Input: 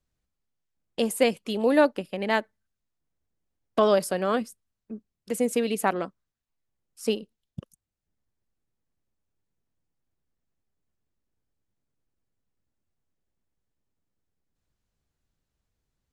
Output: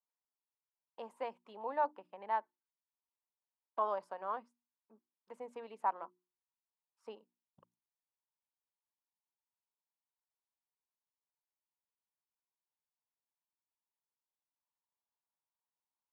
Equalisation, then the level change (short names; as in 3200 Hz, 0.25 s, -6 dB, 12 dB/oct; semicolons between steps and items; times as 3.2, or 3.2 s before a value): synth low-pass 950 Hz, resonance Q 6; differentiator; notches 60/120/180/240/300/360 Hz; 0.0 dB